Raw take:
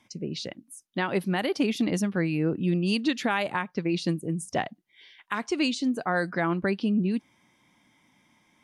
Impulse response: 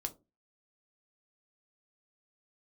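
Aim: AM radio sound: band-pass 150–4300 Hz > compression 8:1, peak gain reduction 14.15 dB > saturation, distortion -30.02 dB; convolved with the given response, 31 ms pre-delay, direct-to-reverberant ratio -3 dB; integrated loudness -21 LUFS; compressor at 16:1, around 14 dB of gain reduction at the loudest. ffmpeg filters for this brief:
-filter_complex "[0:a]acompressor=threshold=0.0178:ratio=16,asplit=2[s0][s1];[1:a]atrim=start_sample=2205,adelay=31[s2];[s1][s2]afir=irnorm=-1:irlink=0,volume=1.58[s3];[s0][s3]amix=inputs=2:normalize=0,highpass=150,lowpass=4300,acompressor=threshold=0.00794:ratio=8,asoftclip=threshold=0.0316,volume=18.8"

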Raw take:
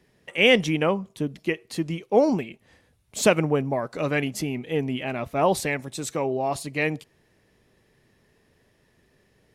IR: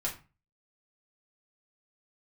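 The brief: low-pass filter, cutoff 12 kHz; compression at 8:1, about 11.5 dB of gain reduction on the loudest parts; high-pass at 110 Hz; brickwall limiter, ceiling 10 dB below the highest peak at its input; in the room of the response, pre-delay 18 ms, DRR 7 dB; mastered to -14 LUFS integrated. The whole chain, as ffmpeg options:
-filter_complex "[0:a]highpass=110,lowpass=12000,acompressor=threshold=0.0631:ratio=8,alimiter=limit=0.075:level=0:latency=1,asplit=2[s0][s1];[1:a]atrim=start_sample=2205,adelay=18[s2];[s1][s2]afir=irnorm=-1:irlink=0,volume=0.299[s3];[s0][s3]amix=inputs=2:normalize=0,volume=8.91"

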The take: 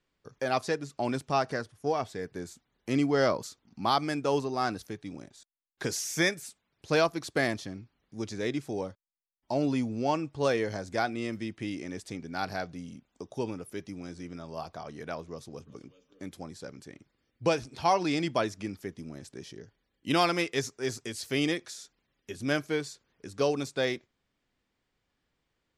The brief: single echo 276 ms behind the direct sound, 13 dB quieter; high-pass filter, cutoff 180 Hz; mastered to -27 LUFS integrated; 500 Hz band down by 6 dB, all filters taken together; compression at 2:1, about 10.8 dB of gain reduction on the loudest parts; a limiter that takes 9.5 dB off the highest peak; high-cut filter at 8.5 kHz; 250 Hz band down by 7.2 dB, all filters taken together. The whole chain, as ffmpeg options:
-af "highpass=180,lowpass=8500,equalizer=f=250:t=o:g=-6,equalizer=f=500:t=o:g=-6,acompressor=threshold=0.00708:ratio=2,alimiter=level_in=2.51:limit=0.0631:level=0:latency=1,volume=0.398,aecho=1:1:276:0.224,volume=8.91"

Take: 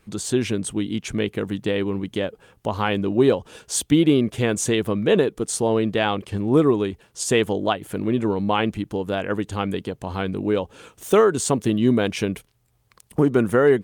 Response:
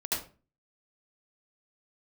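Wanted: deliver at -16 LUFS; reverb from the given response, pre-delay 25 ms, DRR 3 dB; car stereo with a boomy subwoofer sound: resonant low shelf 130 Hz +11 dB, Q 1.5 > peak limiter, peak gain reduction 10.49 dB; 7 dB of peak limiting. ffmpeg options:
-filter_complex "[0:a]alimiter=limit=0.211:level=0:latency=1,asplit=2[s0][s1];[1:a]atrim=start_sample=2205,adelay=25[s2];[s1][s2]afir=irnorm=-1:irlink=0,volume=0.355[s3];[s0][s3]amix=inputs=2:normalize=0,lowshelf=f=130:t=q:w=1.5:g=11,volume=3.55,alimiter=limit=0.447:level=0:latency=1"

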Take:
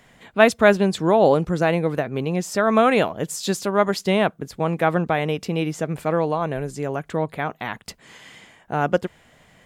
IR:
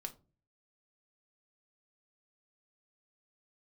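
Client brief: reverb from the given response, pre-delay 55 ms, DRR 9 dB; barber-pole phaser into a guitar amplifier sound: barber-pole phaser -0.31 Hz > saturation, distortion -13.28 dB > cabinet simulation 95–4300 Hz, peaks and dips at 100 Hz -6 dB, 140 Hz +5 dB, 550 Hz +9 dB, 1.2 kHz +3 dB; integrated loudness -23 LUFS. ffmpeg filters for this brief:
-filter_complex "[0:a]asplit=2[s0][s1];[1:a]atrim=start_sample=2205,adelay=55[s2];[s1][s2]afir=irnorm=-1:irlink=0,volume=0.501[s3];[s0][s3]amix=inputs=2:normalize=0,asplit=2[s4][s5];[s5]afreqshift=-0.31[s6];[s4][s6]amix=inputs=2:normalize=1,asoftclip=threshold=0.15,highpass=95,equalizer=f=100:t=q:w=4:g=-6,equalizer=f=140:t=q:w=4:g=5,equalizer=f=550:t=q:w=4:g=9,equalizer=f=1200:t=q:w=4:g=3,lowpass=f=4300:w=0.5412,lowpass=f=4300:w=1.3066,volume=1.06"

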